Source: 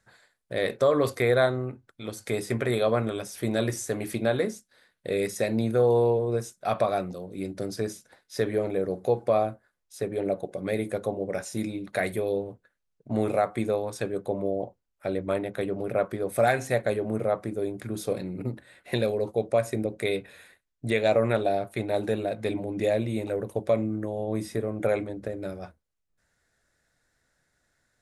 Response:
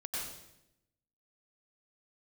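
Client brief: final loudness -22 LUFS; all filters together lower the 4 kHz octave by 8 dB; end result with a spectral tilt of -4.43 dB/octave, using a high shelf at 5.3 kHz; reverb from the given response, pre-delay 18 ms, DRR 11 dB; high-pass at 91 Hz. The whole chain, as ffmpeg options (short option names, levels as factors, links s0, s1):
-filter_complex "[0:a]highpass=91,equalizer=f=4000:t=o:g=-8,highshelf=f=5300:g=-3,asplit=2[s0][s1];[1:a]atrim=start_sample=2205,adelay=18[s2];[s1][s2]afir=irnorm=-1:irlink=0,volume=0.224[s3];[s0][s3]amix=inputs=2:normalize=0,volume=2"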